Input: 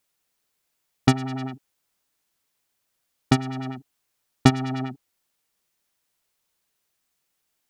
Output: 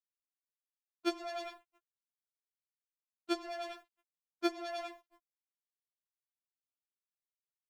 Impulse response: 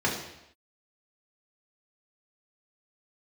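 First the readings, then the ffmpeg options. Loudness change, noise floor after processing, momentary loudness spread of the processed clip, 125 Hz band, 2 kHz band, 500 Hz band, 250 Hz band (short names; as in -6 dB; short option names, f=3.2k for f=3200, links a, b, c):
-15.0 dB, under -85 dBFS, 17 LU, under -40 dB, -12.5 dB, -6.5 dB, -16.5 dB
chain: -filter_complex "[0:a]acrossover=split=140[a][b];[a]crystalizer=i=6:c=0[c];[c][b]amix=inputs=2:normalize=0,acrossover=split=360[d][e];[e]acompressor=threshold=-40dB:ratio=2.5[f];[d][f]amix=inputs=2:normalize=0,afreqshift=27,asplit=2[g][h];[h]adelay=336,lowpass=f=3k:p=1,volume=-20dB,asplit=2[i][j];[j]adelay=336,lowpass=f=3k:p=1,volume=0.23[k];[g][i][k]amix=inputs=3:normalize=0,asplit=2[l][m];[1:a]atrim=start_sample=2205,afade=t=out:st=0.26:d=0.01,atrim=end_sample=11907[n];[m][n]afir=irnorm=-1:irlink=0,volume=-22dB[o];[l][o]amix=inputs=2:normalize=0,aeval=exprs='sgn(val(0))*max(abs(val(0))-0.0133,0)':c=same,acompressor=threshold=-22dB:ratio=6,bass=f=250:g=-14,treble=f=4k:g=1,afftfilt=real='re*4*eq(mod(b,16),0)':imag='im*4*eq(mod(b,16),0)':win_size=2048:overlap=0.75,volume=3dB"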